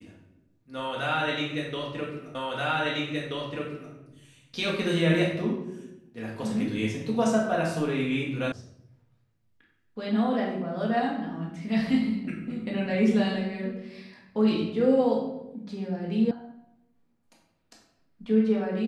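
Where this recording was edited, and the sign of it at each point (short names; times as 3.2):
2.35 repeat of the last 1.58 s
8.52 sound cut off
16.31 sound cut off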